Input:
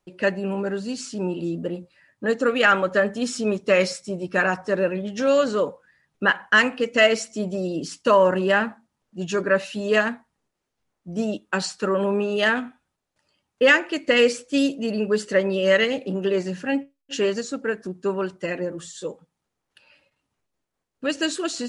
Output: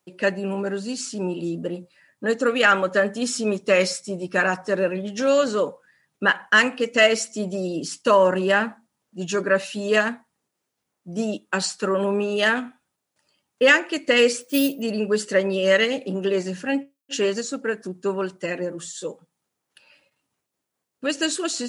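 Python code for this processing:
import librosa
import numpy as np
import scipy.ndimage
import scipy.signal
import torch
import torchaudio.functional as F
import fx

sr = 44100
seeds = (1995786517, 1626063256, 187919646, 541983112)

y = fx.resample_bad(x, sr, factor=3, down='filtered', up='hold', at=(14.41, 14.82))
y = scipy.signal.sosfilt(scipy.signal.butter(2, 120.0, 'highpass', fs=sr, output='sos'), y)
y = fx.high_shelf(y, sr, hz=7100.0, db=9.5)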